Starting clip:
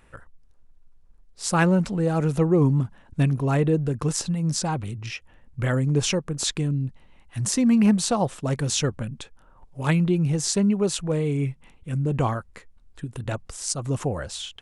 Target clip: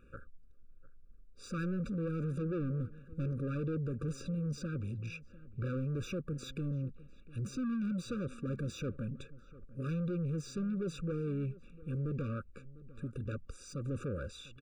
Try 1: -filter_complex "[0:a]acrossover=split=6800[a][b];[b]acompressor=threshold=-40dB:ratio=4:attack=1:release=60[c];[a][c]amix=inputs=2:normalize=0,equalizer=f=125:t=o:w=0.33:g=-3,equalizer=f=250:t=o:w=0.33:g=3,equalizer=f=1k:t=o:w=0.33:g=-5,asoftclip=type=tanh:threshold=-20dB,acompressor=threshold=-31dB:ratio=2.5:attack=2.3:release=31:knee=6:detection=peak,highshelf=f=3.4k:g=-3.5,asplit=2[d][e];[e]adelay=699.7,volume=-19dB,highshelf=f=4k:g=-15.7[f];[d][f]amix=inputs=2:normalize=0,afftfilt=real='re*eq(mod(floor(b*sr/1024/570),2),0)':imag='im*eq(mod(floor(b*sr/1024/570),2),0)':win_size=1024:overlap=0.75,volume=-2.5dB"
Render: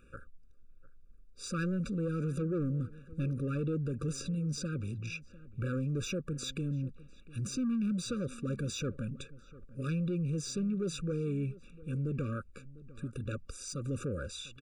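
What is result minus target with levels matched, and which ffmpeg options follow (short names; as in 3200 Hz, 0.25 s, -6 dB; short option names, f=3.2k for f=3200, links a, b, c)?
8000 Hz band +8.0 dB; soft clip: distortion -6 dB
-filter_complex "[0:a]acrossover=split=6800[a][b];[b]acompressor=threshold=-40dB:ratio=4:attack=1:release=60[c];[a][c]amix=inputs=2:normalize=0,equalizer=f=125:t=o:w=0.33:g=-3,equalizer=f=250:t=o:w=0.33:g=3,equalizer=f=1k:t=o:w=0.33:g=-5,asoftclip=type=tanh:threshold=-28dB,acompressor=threshold=-31dB:ratio=2.5:attack=2.3:release=31:knee=6:detection=peak,highshelf=f=3.4k:g=-15,asplit=2[d][e];[e]adelay=699.7,volume=-19dB,highshelf=f=4k:g=-15.7[f];[d][f]amix=inputs=2:normalize=0,afftfilt=real='re*eq(mod(floor(b*sr/1024/570),2),0)':imag='im*eq(mod(floor(b*sr/1024/570),2),0)':win_size=1024:overlap=0.75,volume=-2.5dB"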